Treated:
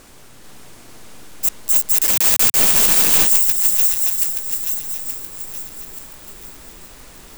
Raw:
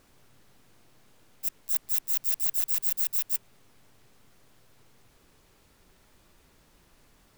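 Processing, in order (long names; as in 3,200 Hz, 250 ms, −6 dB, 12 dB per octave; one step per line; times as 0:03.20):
feedback delay that plays each chunk backwards 438 ms, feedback 61%, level −2 dB
parametric band 8,200 Hz +4.5 dB 0.88 octaves
0:02.03–0:03.27: log-companded quantiser 2 bits
parametric band 120 Hz −4.5 dB 0.81 octaves
sine wavefolder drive 16 dB, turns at 0.5 dBFS
level −4 dB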